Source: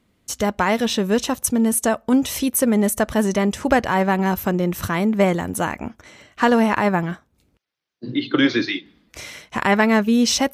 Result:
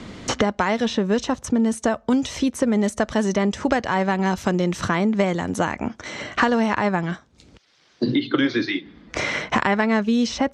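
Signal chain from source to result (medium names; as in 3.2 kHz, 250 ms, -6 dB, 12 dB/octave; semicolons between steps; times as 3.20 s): low-pass 7 kHz 24 dB/octave; peaking EQ 2.6 kHz -3 dB 0.32 oct; three bands compressed up and down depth 100%; trim -2.5 dB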